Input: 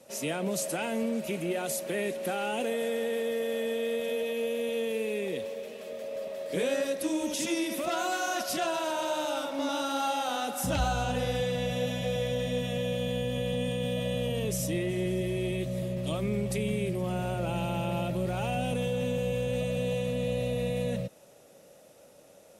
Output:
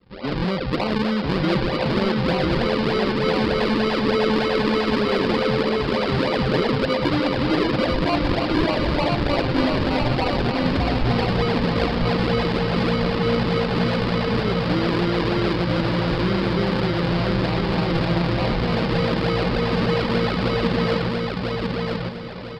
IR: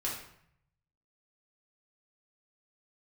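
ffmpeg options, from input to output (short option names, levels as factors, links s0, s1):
-filter_complex "[0:a]adynamicequalizer=threshold=0.01:dfrequency=250:dqfactor=0.78:tfrequency=250:tqfactor=0.78:attack=5:release=100:ratio=0.375:range=2:mode=boostabove:tftype=bell,acompressor=threshold=0.02:ratio=12,aresample=11025,acrusher=samples=11:mix=1:aa=0.000001:lfo=1:lforange=11:lforate=3.3,aresample=44100,dynaudnorm=f=100:g=5:m=6.31,asplit=2[s0][s1];[s1]asoftclip=type=hard:threshold=0.1,volume=0.398[s2];[s0][s2]amix=inputs=2:normalize=0,aecho=1:1:1000|2000|3000|4000:0.708|0.241|0.0818|0.0278,asetrate=41625,aresample=44100,atempo=1.05946,volume=0.708"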